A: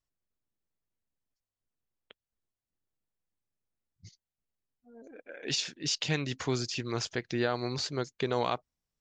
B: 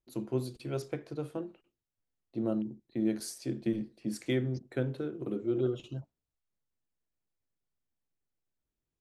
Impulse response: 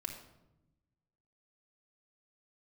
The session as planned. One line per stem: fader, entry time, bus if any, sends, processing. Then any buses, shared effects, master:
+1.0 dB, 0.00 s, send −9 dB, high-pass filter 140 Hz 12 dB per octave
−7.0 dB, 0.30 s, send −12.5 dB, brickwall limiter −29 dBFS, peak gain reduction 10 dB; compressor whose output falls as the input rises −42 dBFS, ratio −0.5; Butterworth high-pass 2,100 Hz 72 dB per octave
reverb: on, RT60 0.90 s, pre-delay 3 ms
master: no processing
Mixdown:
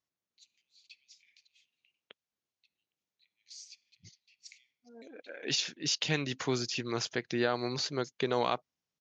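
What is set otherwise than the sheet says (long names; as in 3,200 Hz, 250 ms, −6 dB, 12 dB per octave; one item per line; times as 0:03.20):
stem A: send off
master: extra elliptic low-pass filter 6,700 Hz, stop band 40 dB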